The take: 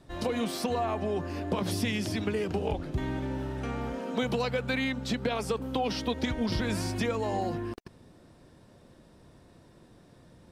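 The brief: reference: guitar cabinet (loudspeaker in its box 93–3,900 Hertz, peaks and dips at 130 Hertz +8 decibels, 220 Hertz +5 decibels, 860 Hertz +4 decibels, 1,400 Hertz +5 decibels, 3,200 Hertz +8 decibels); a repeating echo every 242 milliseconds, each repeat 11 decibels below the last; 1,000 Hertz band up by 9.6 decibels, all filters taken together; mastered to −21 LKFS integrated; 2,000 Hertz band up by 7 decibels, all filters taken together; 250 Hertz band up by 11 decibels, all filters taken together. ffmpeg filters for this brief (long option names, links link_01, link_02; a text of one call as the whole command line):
ffmpeg -i in.wav -af "highpass=93,equalizer=frequency=130:width_type=q:width=4:gain=8,equalizer=frequency=220:width_type=q:width=4:gain=5,equalizer=frequency=860:width_type=q:width=4:gain=4,equalizer=frequency=1400:width_type=q:width=4:gain=5,equalizer=frequency=3200:width_type=q:width=4:gain=8,lowpass=frequency=3900:width=0.5412,lowpass=frequency=3900:width=1.3066,equalizer=frequency=250:width_type=o:gain=8.5,equalizer=frequency=1000:width_type=o:gain=8,equalizer=frequency=2000:width_type=o:gain=3.5,aecho=1:1:242|484|726:0.282|0.0789|0.0221,volume=2dB" out.wav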